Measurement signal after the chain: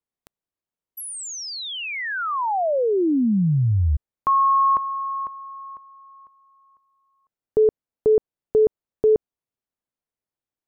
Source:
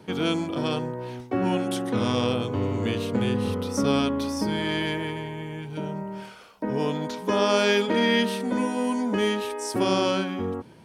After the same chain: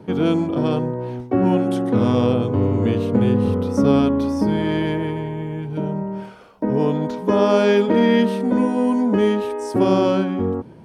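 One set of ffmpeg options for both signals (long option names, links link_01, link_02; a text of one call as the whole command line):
ffmpeg -i in.wav -af "tiltshelf=frequency=1400:gain=7.5,volume=1dB" out.wav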